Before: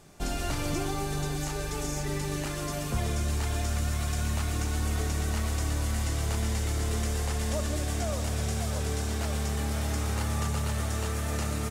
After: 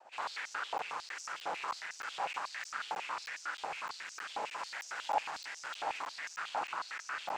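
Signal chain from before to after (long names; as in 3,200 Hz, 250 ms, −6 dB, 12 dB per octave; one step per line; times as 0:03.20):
high-shelf EQ 6,200 Hz −10.5 dB
cochlear-implant simulation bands 8
time stretch by overlap-add 0.63×, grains 149 ms
four-comb reverb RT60 0.58 s, DRR −2 dB
asymmetric clip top −33.5 dBFS
high-shelf EQ 2,900 Hz −11.5 dB
regular buffer underruns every 0.31 s, samples 512, zero, from 0:00.78
high-pass on a step sequencer 11 Hz 800–5,800 Hz
level −1.5 dB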